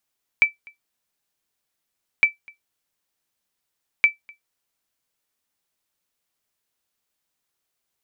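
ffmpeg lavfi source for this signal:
ffmpeg -f lavfi -i "aevalsrc='0.501*(sin(2*PI*2320*mod(t,1.81))*exp(-6.91*mod(t,1.81)/0.14)+0.0376*sin(2*PI*2320*max(mod(t,1.81)-0.25,0))*exp(-6.91*max(mod(t,1.81)-0.25,0)/0.14))':duration=5.43:sample_rate=44100" out.wav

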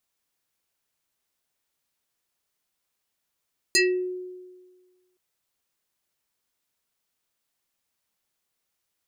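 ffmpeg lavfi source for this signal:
ffmpeg -f lavfi -i "aevalsrc='0.178*pow(10,-3*t/1.51)*sin(2*PI*365*t+3.8*pow(10,-3*t/0.34)*sin(2*PI*6.24*365*t))':duration=1.42:sample_rate=44100" out.wav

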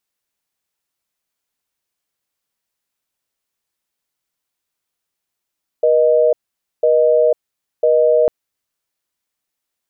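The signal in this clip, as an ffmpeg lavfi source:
ffmpeg -f lavfi -i "aevalsrc='0.237*(sin(2*PI*480*t)+sin(2*PI*620*t))*clip(min(mod(t,1),0.5-mod(t,1))/0.005,0,1)':duration=2.45:sample_rate=44100" out.wav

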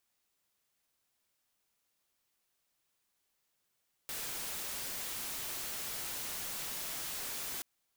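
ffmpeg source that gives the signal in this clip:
ffmpeg -f lavfi -i "anoisesrc=color=white:amplitude=0.0173:duration=3.53:sample_rate=44100:seed=1" out.wav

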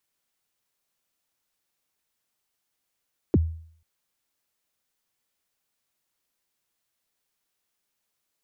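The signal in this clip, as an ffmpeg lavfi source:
ffmpeg -f lavfi -i "aevalsrc='0.224*pow(10,-3*t/0.56)*sin(2*PI*(440*0.033/log(81/440)*(exp(log(81/440)*min(t,0.033)/0.033)-1)+81*max(t-0.033,0)))':duration=0.49:sample_rate=44100" out.wav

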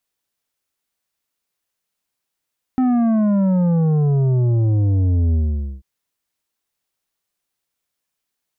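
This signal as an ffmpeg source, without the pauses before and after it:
ffmpeg -f lavfi -i "aevalsrc='0.188*clip((3.04-t)/0.48,0,1)*tanh(2.66*sin(2*PI*260*3.04/log(65/260)*(exp(log(65/260)*t/3.04)-1)))/tanh(2.66)':duration=3.04:sample_rate=44100" out.wav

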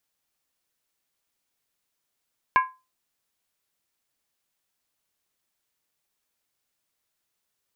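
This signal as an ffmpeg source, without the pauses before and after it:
ffmpeg -f lavfi -i "aevalsrc='0.237*pow(10,-3*t/0.27)*sin(2*PI*1030*t)+0.119*pow(10,-3*t/0.214)*sin(2*PI*1641.8*t)+0.0596*pow(10,-3*t/0.185)*sin(2*PI*2200.1*t)+0.0299*pow(10,-3*t/0.178)*sin(2*PI*2364.9*t)+0.015*pow(10,-3*t/0.166)*sin(2*PI*2732.6*t)':duration=0.63:sample_rate=44100" out.wav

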